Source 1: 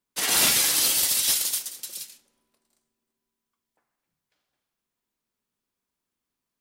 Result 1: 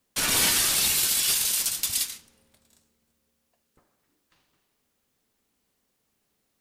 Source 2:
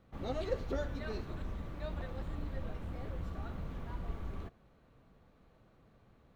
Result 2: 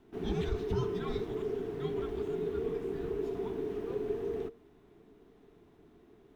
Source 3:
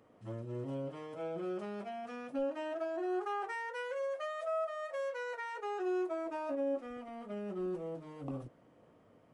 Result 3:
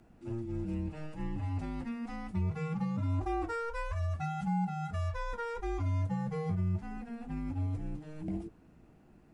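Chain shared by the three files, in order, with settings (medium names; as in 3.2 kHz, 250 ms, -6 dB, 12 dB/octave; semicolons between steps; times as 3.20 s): in parallel at +2 dB: compressor with a negative ratio -34 dBFS, ratio -1; on the sum: frequency shift -460 Hz; trim -3 dB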